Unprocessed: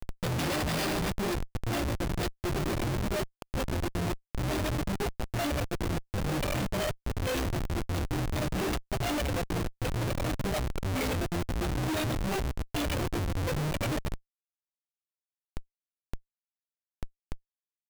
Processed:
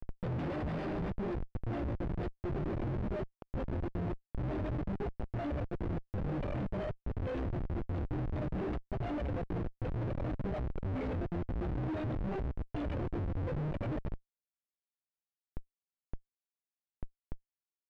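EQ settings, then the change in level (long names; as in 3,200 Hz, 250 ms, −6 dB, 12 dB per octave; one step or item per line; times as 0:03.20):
low-pass filter 1,400 Hz 12 dB per octave
parametric band 1,100 Hz −4.5 dB 1.6 octaves
−4.0 dB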